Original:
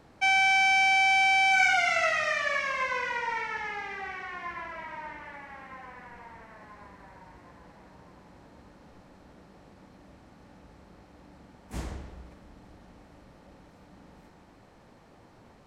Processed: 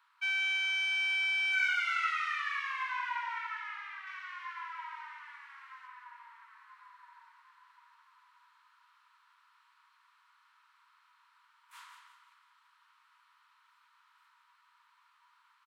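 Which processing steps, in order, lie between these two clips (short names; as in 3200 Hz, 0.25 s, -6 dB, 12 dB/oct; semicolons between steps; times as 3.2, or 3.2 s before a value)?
rippled Chebyshev high-pass 940 Hz, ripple 6 dB; bell 5900 Hz -12.5 dB 1.5 oct, from 4.07 s -4 dB, from 5.87 s -10 dB; feedback echo 0.174 s, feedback 39%, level -8.5 dB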